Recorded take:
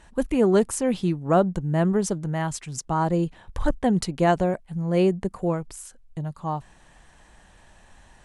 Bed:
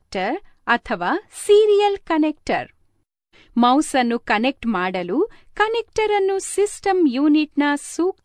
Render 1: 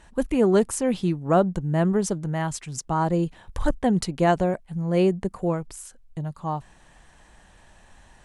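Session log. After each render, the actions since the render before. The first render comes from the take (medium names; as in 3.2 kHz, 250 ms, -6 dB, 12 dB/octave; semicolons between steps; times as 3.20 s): 3.26–3.75 s: treble shelf 5.9 kHz +5 dB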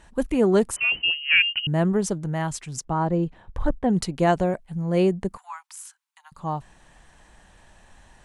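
0.76–1.67 s: frequency inversion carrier 3 kHz; 2.83–3.88 s: low-pass 2 kHz -> 1.2 kHz 6 dB/octave; 5.37–6.32 s: steep high-pass 860 Hz 72 dB/octave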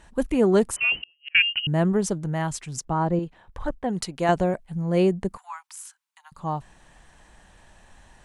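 0.95–1.35 s: inverted gate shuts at -21 dBFS, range -38 dB; 3.19–4.29 s: bass shelf 420 Hz -8.5 dB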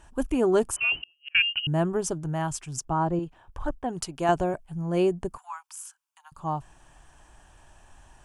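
graphic EQ with 31 bands 200 Hz -12 dB, 500 Hz -7 dB, 2 kHz -10 dB, 4 kHz -9 dB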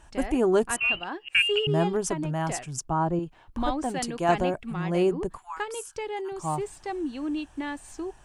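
add bed -14.5 dB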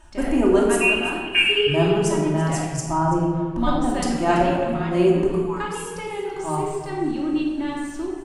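delay 333 ms -15.5 dB; simulated room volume 1300 m³, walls mixed, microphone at 2.7 m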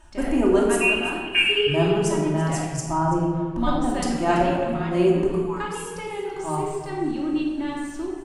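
trim -1.5 dB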